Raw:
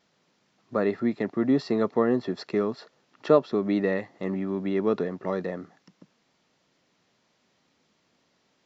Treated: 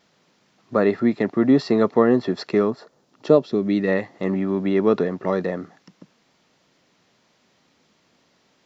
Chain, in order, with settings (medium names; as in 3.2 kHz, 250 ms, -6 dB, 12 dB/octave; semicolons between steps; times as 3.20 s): 2.69–3.87 s: peaking EQ 3.8 kHz -> 710 Hz -10.5 dB 1.9 oct; trim +6.5 dB